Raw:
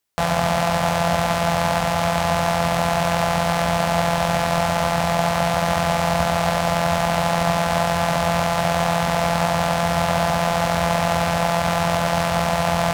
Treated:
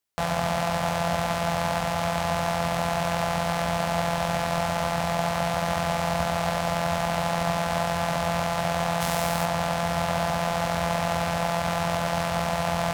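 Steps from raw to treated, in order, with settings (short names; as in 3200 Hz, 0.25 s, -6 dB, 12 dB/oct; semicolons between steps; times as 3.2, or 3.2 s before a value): 9–9.44 high shelf 4900 Hz -> 9800 Hz +11.5 dB; gain -6 dB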